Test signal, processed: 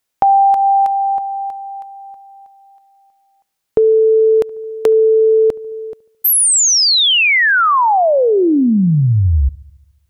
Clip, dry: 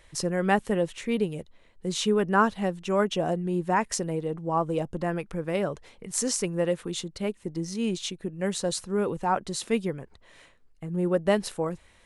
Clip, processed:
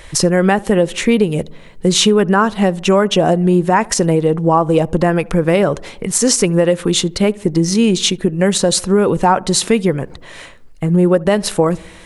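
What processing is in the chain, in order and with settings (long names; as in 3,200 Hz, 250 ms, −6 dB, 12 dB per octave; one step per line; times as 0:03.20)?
downward compressor 5 to 1, threshold −28 dBFS
feedback echo with a low-pass in the loop 72 ms, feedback 65%, low-pass 1,300 Hz, level −23 dB
boost into a limiter +20 dB
level −1 dB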